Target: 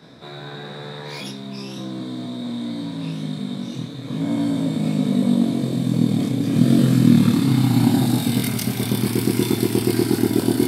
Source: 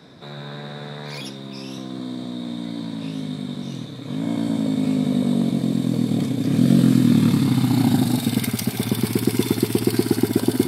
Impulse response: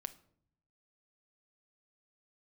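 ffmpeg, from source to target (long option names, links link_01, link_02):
-filter_complex "[0:a]asplit=2[link_01][link_02];[1:a]atrim=start_sample=2205,adelay=25[link_03];[link_02][link_03]afir=irnorm=-1:irlink=0,volume=2dB[link_04];[link_01][link_04]amix=inputs=2:normalize=0,volume=-1.5dB"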